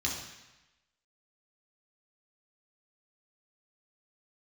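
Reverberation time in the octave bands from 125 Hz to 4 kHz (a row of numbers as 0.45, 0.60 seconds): 1.0, 0.95, 0.95, 1.1, 1.1, 1.0 seconds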